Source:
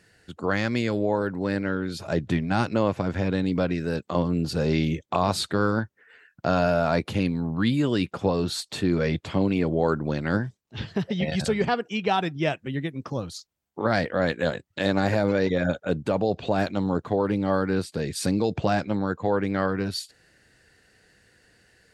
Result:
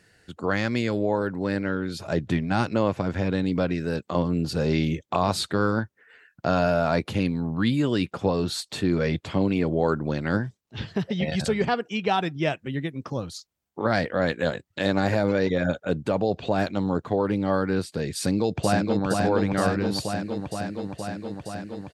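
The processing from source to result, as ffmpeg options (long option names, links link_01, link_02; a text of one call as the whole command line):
ffmpeg -i in.wav -filter_complex "[0:a]asplit=2[link_01][link_02];[link_02]afade=type=in:start_time=18.16:duration=0.01,afade=type=out:start_time=19.05:duration=0.01,aecho=0:1:470|940|1410|1880|2350|2820|3290|3760|4230|4700|5170|5640:0.707946|0.566357|0.453085|0.362468|0.289975|0.23198|0.185584|0.148467|0.118774|0.0950189|0.0760151|0.0608121[link_03];[link_01][link_03]amix=inputs=2:normalize=0" out.wav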